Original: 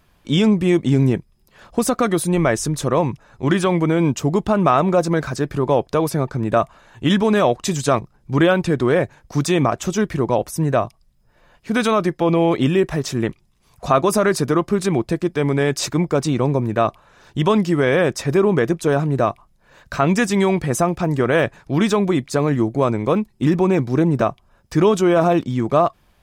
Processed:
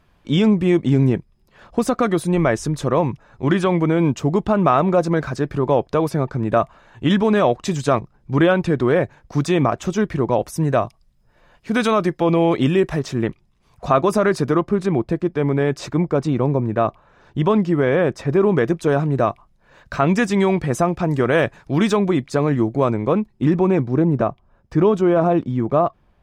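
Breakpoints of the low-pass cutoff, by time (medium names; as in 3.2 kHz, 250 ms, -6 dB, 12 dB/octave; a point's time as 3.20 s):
low-pass 6 dB/octave
3.2 kHz
from 10.38 s 7 kHz
from 12.99 s 2.9 kHz
from 14.61 s 1.5 kHz
from 18.41 s 3.8 kHz
from 21.07 s 7.5 kHz
from 21.97 s 3.6 kHz
from 22.94 s 2 kHz
from 23.82 s 1.1 kHz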